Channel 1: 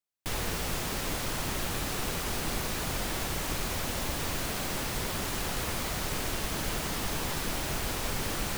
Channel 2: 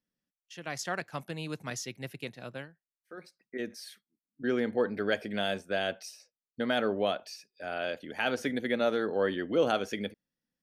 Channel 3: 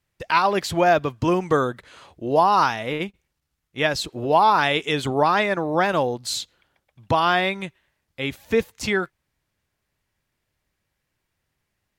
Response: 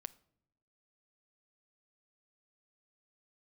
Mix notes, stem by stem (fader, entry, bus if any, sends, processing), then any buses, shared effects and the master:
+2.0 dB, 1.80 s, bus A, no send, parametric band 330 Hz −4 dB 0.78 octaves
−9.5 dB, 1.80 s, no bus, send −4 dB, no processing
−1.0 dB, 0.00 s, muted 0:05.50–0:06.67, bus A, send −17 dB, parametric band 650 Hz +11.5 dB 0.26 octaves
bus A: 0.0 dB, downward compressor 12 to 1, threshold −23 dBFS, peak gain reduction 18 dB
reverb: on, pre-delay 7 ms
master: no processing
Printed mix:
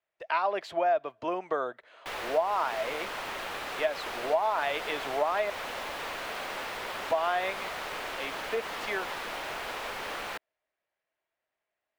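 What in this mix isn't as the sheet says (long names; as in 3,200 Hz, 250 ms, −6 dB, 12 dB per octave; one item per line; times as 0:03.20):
stem 2: muted
stem 3 −1.0 dB → −8.0 dB
master: extra three-way crossover with the lows and the highs turned down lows −23 dB, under 360 Hz, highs −16 dB, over 3,500 Hz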